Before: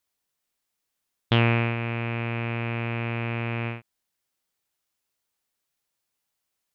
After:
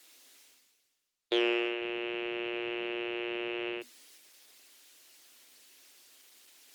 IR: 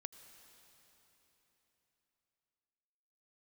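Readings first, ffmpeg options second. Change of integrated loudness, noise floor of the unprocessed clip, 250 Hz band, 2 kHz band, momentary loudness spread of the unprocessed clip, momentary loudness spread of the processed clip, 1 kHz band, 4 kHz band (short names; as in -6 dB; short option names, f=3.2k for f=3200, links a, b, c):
-6.5 dB, -81 dBFS, -5.5 dB, -6.0 dB, 8 LU, 8 LU, -10.5 dB, -0.5 dB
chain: -filter_complex "[0:a]equalizer=f=800:w=0.54:g=-13,asplit=2[a][b];[b]highpass=f=720:p=1,volume=6dB,asoftclip=type=tanh:threshold=-15dB[c];[a][c]amix=inputs=2:normalize=0,lowpass=f=3.2k:p=1,volume=-6dB,areverse,acompressor=mode=upward:threshold=-31dB:ratio=2.5,areverse,afreqshift=240,volume=-1dB" -ar 48000 -c:a libopus -b:a 16k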